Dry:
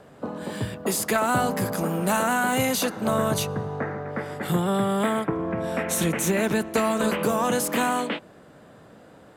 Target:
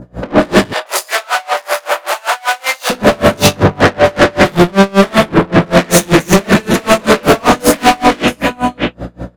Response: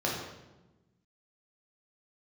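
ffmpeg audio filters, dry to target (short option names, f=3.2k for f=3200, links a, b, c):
-filter_complex "[0:a]acompressor=threshold=-35dB:ratio=10,adynamicequalizer=threshold=0.00141:dfrequency=2800:dqfactor=1.2:tfrequency=2800:tqfactor=1.2:attack=5:release=100:ratio=0.375:range=2.5:mode=boostabove:tftype=bell,agate=range=-33dB:threshold=-35dB:ratio=3:detection=peak,aeval=exprs='val(0)+0.000891*(sin(2*PI*60*n/s)+sin(2*PI*2*60*n/s)/2+sin(2*PI*3*60*n/s)/3+sin(2*PI*4*60*n/s)/4+sin(2*PI*5*60*n/s)/5)':c=same,aecho=1:1:51|156|679:0.708|0.15|0.2[a];[1:a]atrim=start_sample=2205,atrim=end_sample=3528[b];[a][b]afir=irnorm=-1:irlink=0,asoftclip=type=tanh:threshold=-37dB,asettb=1/sr,asplit=3[c][d][e];[c]atrim=end=0.734[f];[d]atrim=start=0.73:end=2.9,asetpts=PTS-STARTPTS,afade=t=in:d=0.004:c=qsin,afade=t=out:st=2.166:d=0.004:c=qsin,highpass=f=650:w=0.5412,highpass=f=650:w=1.3066[g];[e]atrim=start=2.896[h];[f][g]acrossfade=d=0.004:c1=hsin:c2=qsin[i];[i][h]acrossfade=d=0.004:c1=qsin:c2=hsin,alimiter=level_in=35dB:limit=-1dB:release=50:level=0:latency=1,aeval=exprs='val(0)*pow(10,-30*(0.5-0.5*cos(2*PI*5.2*n/s))/20)':c=same"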